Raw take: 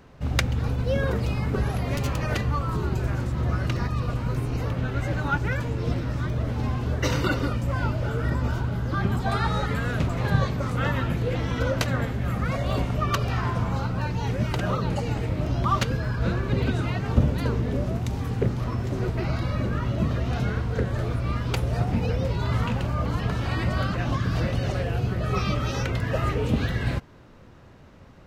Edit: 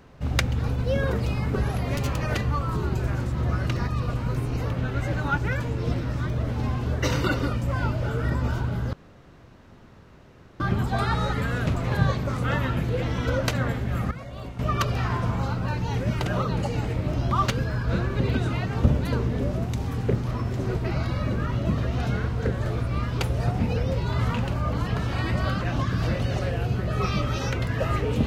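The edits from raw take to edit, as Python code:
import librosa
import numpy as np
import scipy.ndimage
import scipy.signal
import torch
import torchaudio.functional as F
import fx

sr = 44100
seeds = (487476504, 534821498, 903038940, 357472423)

y = fx.edit(x, sr, fx.insert_room_tone(at_s=8.93, length_s=1.67),
    fx.clip_gain(start_s=12.44, length_s=0.48, db=-11.5), tone=tone)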